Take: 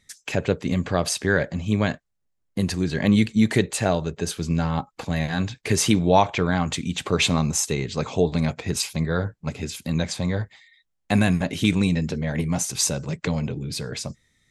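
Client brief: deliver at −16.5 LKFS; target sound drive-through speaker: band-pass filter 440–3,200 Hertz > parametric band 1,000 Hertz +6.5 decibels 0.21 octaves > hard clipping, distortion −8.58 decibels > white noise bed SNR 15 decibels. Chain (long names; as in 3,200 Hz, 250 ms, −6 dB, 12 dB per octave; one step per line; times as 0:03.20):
band-pass filter 440–3,200 Hz
parametric band 1,000 Hz +6.5 dB 0.21 octaves
hard clipping −19 dBFS
white noise bed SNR 15 dB
level +14 dB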